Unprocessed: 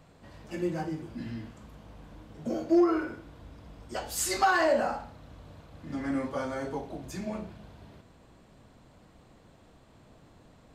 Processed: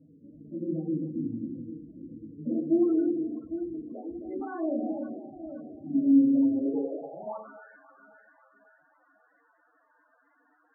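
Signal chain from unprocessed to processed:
on a send: delay that swaps between a low-pass and a high-pass 268 ms, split 810 Hz, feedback 71%, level −7 dB
on the sum: feedback delay network reverb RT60 0.6 s, low-frequency decay 1.45×, high-frequency decay 0.3×, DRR 3 dB
in parallel at +0.5 dB: brickwall limiter −20 dBFS, peak gain reduction 9 dB
on the sum: band-pass filter sweep 260 Hz → 1,600 Hz, 0:06.53–0:07.68
spectral peaks only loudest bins 16
level −1.5 dB

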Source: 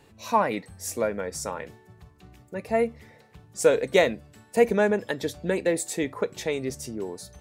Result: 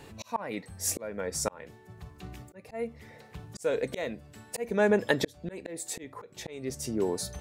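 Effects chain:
volume swells 757 ms
level +7 dB

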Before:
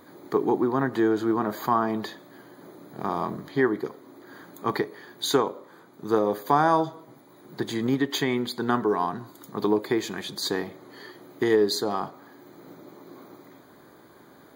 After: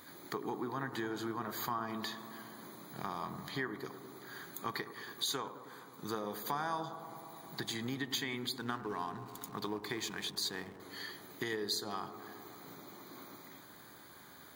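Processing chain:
guitar amp tone stack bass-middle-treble 5-5-5
downward compressor 2.5 to 1, threshold −50 dBFS, peak gain reduction 12.5 dB
0:08.58–0:10.80: slack as between gear wheels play −57.5 dBFS
bucket-brigade delay 105 ms, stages 1,024, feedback 84%, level −13 dB
level +11 dB

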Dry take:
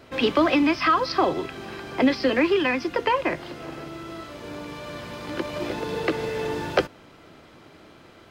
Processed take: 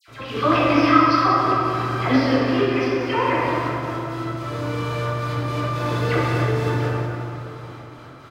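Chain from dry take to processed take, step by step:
thirty-one-band graphic EQ 125 Hz +12 dB, 200 Hz −5 dB, 400 Hz −4 dB, 1,250 Hz +7 dB
in parallel at +2 dB: downward compressor, threshold −27 dBFS, peak gain reduction 16 dB
on the sum: gate pattern "x.xxxxx.x." 110 BPM −12 dB
all-pass dispersion lows, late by 82 ms, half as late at 1,900 Hz
on a send: repeating echo 183 ms, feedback 57%, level −11 dB
on the sum: dense smooth reverb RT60 2.7 s, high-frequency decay 0.5×, pre-delay 0 ms, DRR −6 dB
level −7 dB

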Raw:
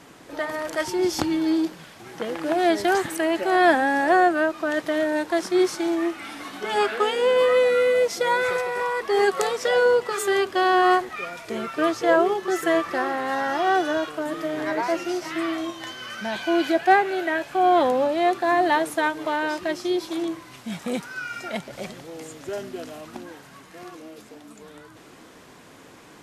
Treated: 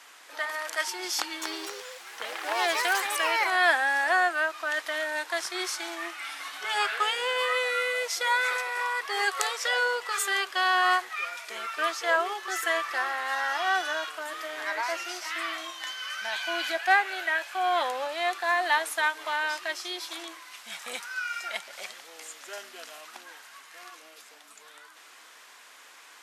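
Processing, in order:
0:01.17–0:03.79: delay with pitch and tempo change per echo 248 ms, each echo +4 semitones, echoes 2, each echo −6 dB
high-pass filter 1,200 Hz 12 dB per octave
level +1.5 dB

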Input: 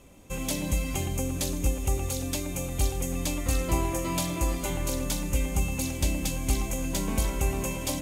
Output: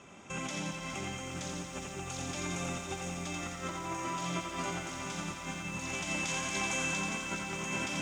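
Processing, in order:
0:05.94–0:06.96: low-shelf EQ 360 Hz −9.5 dB
compressor whose output falls as the input rises −34 dBFS, ratio −1
loudspeaker in its box 180–6,600 Hz, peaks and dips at 280 Hz −9 dB, 510 Hz −9 dB, 1,400 Hz +7 dB, 4,300 Hz −9 dB
feedback echo with a high-pass in the loop 86 ms, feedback 70%, high-pass 520 Hz, level −4 dB
feedback echo at a low word length 414 ms, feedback 80%, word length 10 bits, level −9 dB

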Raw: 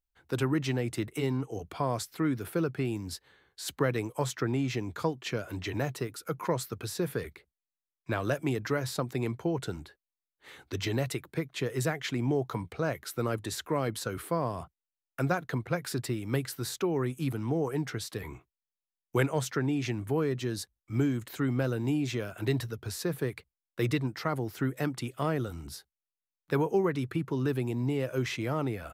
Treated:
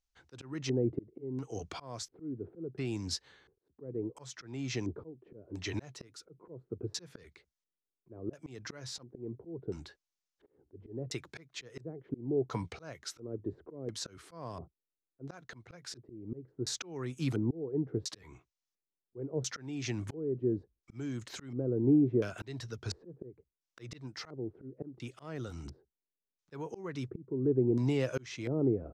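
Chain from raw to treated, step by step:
volume swells 515 ms
auto-filter low-pass square 0.72 Hz 400–6,100 Hz

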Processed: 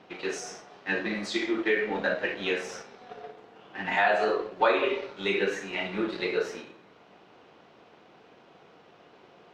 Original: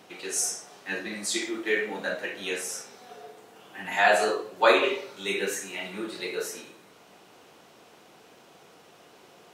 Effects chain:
mu-law and A-law mismatch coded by A
downward compressor 3 to 1, threshold −30 dBFS, peak gain reduction 12 dB
high-frequency loss of the air 220 metres
level +8 dB

